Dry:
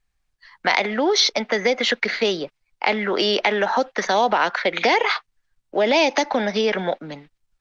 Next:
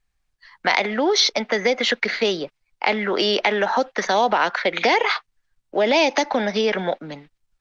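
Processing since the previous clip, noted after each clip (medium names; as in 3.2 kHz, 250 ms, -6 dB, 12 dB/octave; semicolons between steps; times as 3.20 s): no audible change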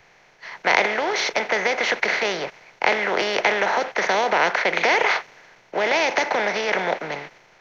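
spectral levelling over time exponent 0.4; graphic EQ 125/250/2000/4000 Hz +6/-11/+5/-9 dB; three bands expanded up and down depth 40%; trim -6 dB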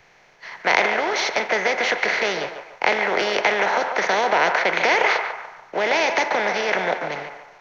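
band-passed feedback delay 145 ms, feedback 46%, band-pass 1 kHz, level -5.5 dB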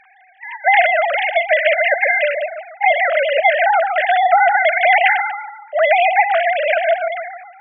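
formants replaced by sine waves; trim +6 dB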